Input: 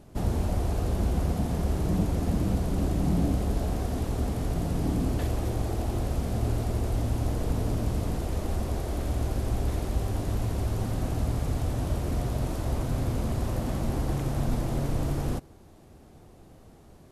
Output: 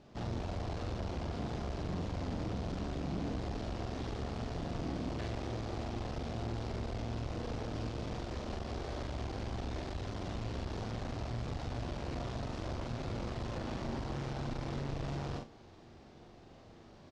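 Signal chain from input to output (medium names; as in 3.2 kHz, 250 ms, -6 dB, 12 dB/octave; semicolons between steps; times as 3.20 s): doubling 43 ms -3 dB; in parallel at +1.5 dB: compression, threshold -30 dBFS, peak gain reduction 12 dB; on the sum: low-pass 5.2 kHz 24 dB/octave; tilt EQ +1.5 dB/octave; flutter echo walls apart 5.9 m, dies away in 0.2 s; valve stage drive 25 dB, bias 0.75; reverse; upward compressor, threshold -43 dBFS; reverse; trim -7 dB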